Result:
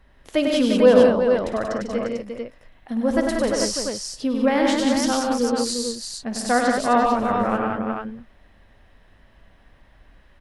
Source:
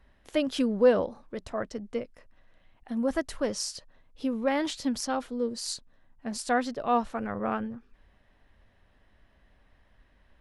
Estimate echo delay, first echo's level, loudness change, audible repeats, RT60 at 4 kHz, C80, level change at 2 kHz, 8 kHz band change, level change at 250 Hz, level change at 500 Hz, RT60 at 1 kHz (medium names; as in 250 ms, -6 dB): 54 ms, -13.5 dB, +9.0 dB, 6, no reverb, no reverb, +9.5 dB, +9.5 dB, +9.5 dB, +9.5 dB, no reverb